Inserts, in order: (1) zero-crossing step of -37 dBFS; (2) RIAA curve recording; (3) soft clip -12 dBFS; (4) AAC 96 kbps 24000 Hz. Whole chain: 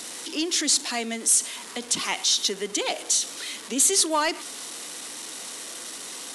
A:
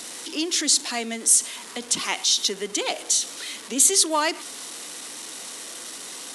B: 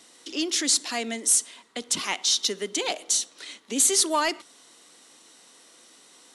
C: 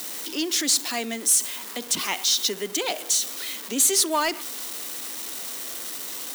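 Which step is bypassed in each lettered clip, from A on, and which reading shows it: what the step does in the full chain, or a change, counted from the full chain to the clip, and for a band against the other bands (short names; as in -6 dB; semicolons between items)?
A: 3, distortion -15 dB; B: 1, distortion -16 dB; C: 4, crest factor change -2.0 dB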